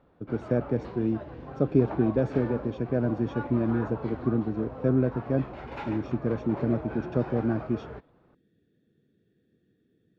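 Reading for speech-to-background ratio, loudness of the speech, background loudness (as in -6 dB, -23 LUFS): 11.0 dB, -28.5 LUFS, -39.5 LUFS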